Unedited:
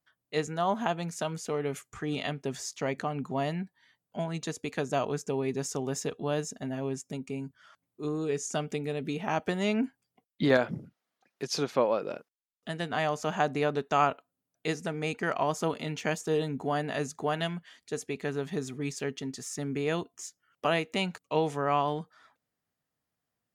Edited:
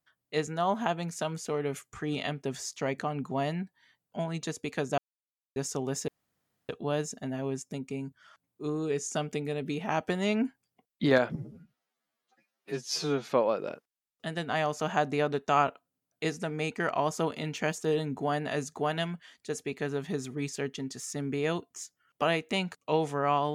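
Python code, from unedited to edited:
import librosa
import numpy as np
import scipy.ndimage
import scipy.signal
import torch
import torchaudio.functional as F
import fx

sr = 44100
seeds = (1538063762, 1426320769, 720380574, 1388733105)

y = fx.edit(x, sr, fx.silence(start_s=4.98, length_s=0.58),
    fx.insert_room_tone(at_s=6.08, length_s=0.61),
    fx.stretch_span(start_s=10.74, length_s=0.96, factor=2.0), tone=tone)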